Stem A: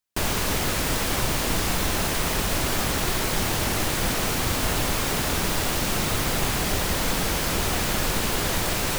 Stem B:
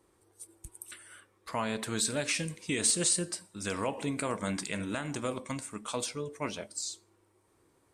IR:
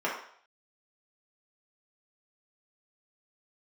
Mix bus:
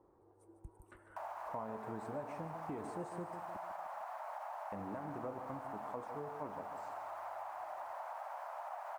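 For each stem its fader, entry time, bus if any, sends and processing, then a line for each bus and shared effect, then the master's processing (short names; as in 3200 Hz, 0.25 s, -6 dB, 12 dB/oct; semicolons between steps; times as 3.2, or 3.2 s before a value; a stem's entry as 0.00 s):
-6.0 dB, 1.00 s, no send, no echo send, steep high-pass 610 Hz 72 dB/oct; limiter -20.5 dBFS, peak gain reduction 6.5 dB
-1.5 dB, 0.00 s, muted 3.57–4.72, no send, echo send -11 dB, dry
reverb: off
echo: feedback echo 0.15 s, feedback 41%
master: EQ curve 220 Hz 0 dB, 890 Hz +6 dB, 3500 Hz -28 dB; compressor 2.5:1, threshold -45 dBFS, peak gain reduction 13 dB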